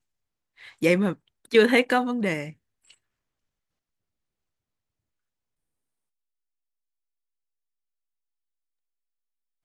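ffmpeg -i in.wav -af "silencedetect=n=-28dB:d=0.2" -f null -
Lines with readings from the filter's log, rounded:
silence_start: 0.00
silence_end: 0.82 | silence_duration: 0.82
silence_start: 1.13
silence_end: 1.53 | silence_duration: 0.40
silence_start: 2.45
silence_end: 9.64 | silence_duration: 7.19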